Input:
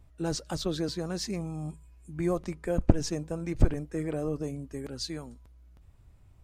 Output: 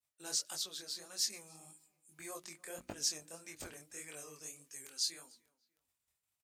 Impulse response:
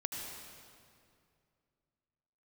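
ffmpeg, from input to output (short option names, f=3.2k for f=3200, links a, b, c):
-filter_complex "[0:a]agate=range=-33dB:threshold=-47dB:ratio=3:detection=peak,bandreject=f=60:t=h:w=6,bandreject=f=120:t=h:w=6,bandreject=f=180:t=h:w=6,bandreject=f=240:t=h:w=6,bandreject=f=300:t=h:w=6,bandreject=f=360:t=h:w=6,asplit=2[a][b];[b]adelay=296,lowpass=f=2.5k:p=1,volume=-23dB,asplit=2[c][d];[d]adelay=296,lowpass=f=2.5k:p=1,volume=0.36[e];[a][c][e]amix=inputs=3:normalize=0,asettb=1/sr,asplit=3[f][g][h];[f]atrim=end=0.544[i];[g]atrim=start=0.54:end=1.19,asetpts=PTS-STARTPTS,afade=t=in:d=0.004:c=qsin,afade=t=out:st=0.646:d=0.004:c=qsin,acompressor=threshold=-32dB:ratio=5[j];[h]atrim=start=1.186[k];[i][j]acrossfade=d=0.004:c1=hsin:c2=qsin[l];[l][k]acrossfade=d=0.004:c1=qsin:c2=hsin,asettb=1/sr,asplit=3[m][n][o];[m]atrim=end=3.934[p];[n]atrim=start=3.93:end=5,asetpts=PTS-STARTPTS,afade=t=in:d=0.004:c=qsin,afade=t=out:st=1.066:d=0.004:c=qsin,equalizer=f=250:t=o:w=0.67:g=-4,equalizer=f=630:t=o:w=0.67:g=-6,equalizer=f=2.5k:t=o:w=0.67:g=3,equalizer=f=6.3k:t=o:w=0.67:g=6[q];[o]atrim=start=4.996[r];[p][q]acrossfade=d=0.004:c1=hsin:c2=qsin[s];[s][r]acrossfade=d=0.004:c1=qsin:c2=hsin,flanger=delay=19.5:depth=7.3:speed=1.7,aderivative,volume=8dB"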